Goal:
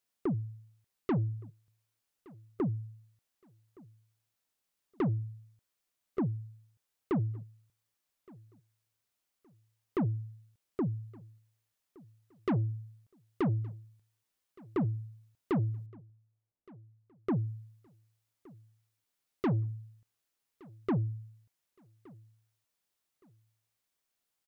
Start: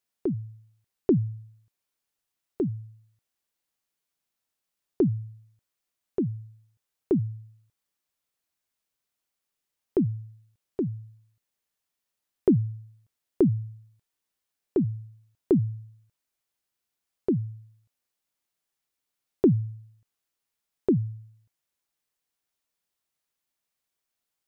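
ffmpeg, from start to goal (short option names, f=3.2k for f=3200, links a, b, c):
-filter_complex "[0:a]asettb=1/sr,asplit=3[a][b][c];[a]atrim=end=15.864[d];[b]atrim=start=15.86:end=17.34,asetpts=PTS-STARTPTS,afade=t=in:d=0.004:c=qsin,afade=t=out:st=1.476:d=0.004:c=qsin,adynamicsmooth=sensitivity=6.5:basefreq=760[e];[c]atrim=start=17.336[f];[d][e]acrossfade=d=0.004:c1=hsin:c2=qsin[g];[g][f]acrossfade=d=0.004:c1=qsin:c2=hsin,asoftclip=type=tanh:threshold=-26dB,aecho=1:1:1168|2336:0.0631|0.0189"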